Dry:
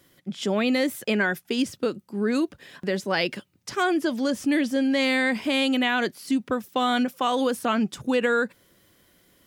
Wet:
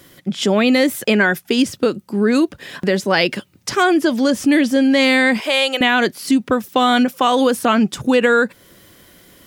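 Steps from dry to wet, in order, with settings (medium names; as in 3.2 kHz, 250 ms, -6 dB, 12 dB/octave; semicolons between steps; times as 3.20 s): 5.40–5.81 s: Chebyshev high-pass 460 Hz, order 3; in parallel at 0 dB: compression, threshold -35 dBFS, peak gain reduction 15.5 dB; on the sum: trim +7 dB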